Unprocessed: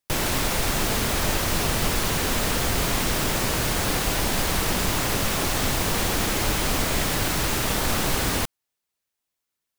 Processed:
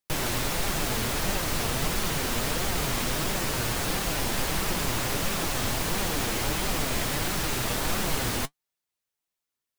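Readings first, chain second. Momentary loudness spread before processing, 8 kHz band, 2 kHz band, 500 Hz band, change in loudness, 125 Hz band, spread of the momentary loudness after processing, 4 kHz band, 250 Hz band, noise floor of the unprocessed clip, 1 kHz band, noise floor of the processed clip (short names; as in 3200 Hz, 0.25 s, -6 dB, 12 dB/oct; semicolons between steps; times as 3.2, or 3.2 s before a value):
0 LU, -4.0 dB, -4.0 dB, -4.0 dB, -4.0 dB, -4.0 dB, 0 LU, -4.0 dB, -4.0 dB, -83 dBFS, -4.0 dB, under -85 dBFS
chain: flange 1.5 Hz, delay 4.8 ms, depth 4.2 ms, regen +54%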